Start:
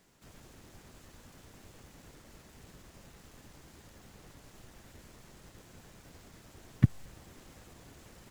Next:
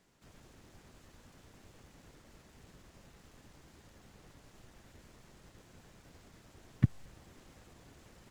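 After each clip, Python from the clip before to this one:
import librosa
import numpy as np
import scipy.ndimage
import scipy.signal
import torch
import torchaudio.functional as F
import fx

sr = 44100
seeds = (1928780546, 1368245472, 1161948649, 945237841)

y = fx.high_shelf(x, sr, hz=9900.0, db=-7.5)
y = y * 10.0 ** (-3.5 / 20.0)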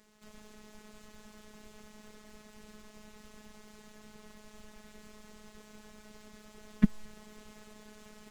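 y = fx.robotise(x, sr, hz=213.0)
y = y * 10.0 ** (7.5 / 20.0)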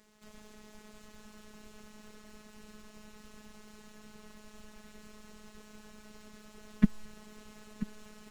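y = x + 10.0 ** (-13.5 / 20.0) * np.pad(x, (int(985 * sr / 1000.0), 0))[:len(x)]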